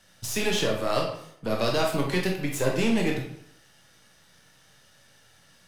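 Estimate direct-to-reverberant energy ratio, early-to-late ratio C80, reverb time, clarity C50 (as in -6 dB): 0.0 dB, 8.0 dB, 0.70 s, 4.5 dB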